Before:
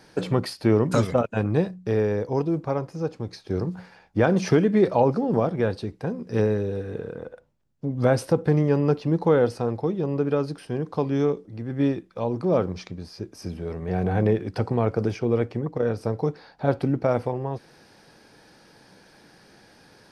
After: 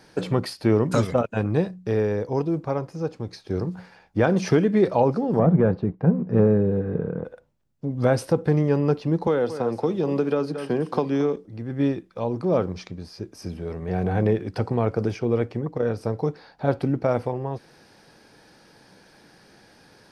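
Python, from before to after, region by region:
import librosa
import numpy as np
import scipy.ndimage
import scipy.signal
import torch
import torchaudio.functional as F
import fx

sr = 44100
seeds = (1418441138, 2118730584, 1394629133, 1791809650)

y = fx.chain(x, sr, fx.leveller(passes=1),
    fx.lowpass(hz=1400.0, slope=12),
    fx.peak_eq(hz=170.0, db=11.5, octaves=0.53), at=(5.39, 7.25))
y = fx.chain(y, sr, fx.highpass(hz=170.0, slope=12),
    fx.echo_single(ms=223, db=-15.0),
    fx.band_squash(depth_pct=100), at=(9.27, 11.36))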